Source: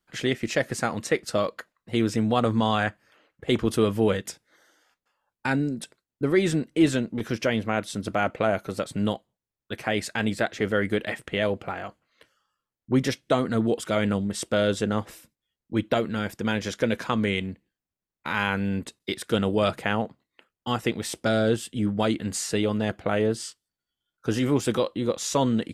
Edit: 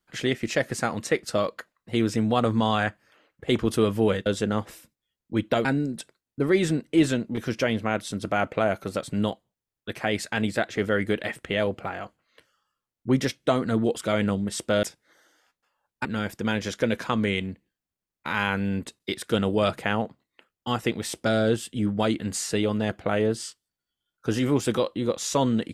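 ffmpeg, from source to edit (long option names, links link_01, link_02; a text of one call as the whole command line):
ffmpeg -i in.wav -filter_complex "[0:a]asplit=5[link_01][link_02][link_03][link_04][link_05];[link_01]atrim=end=4.262[link_06];[link_02]atrim=start=14.658:end=16.052[link_07];[link_03]atrim=start=5.478:end=14.662[link_08];[link_04]atrim=start=4.258:end=5.482[link_09];[link_05]atrim=start=16.048[link_10];[link_06][link_07]acrossfade=duration=0.004:curve1=hsin:curve2=hsin[link_11];[link_11][link_08]acrossfade=duration=0.004:curve1=hsin:curve2=hsin[link_12];[link_12][link_09]acrossfade=duration=0.004:curve1=hsin:curve2=hsin[link_13];[link_13][link_10]acrossfade=duration=0.004:curve1=hsin:curve2=hsin" out.wav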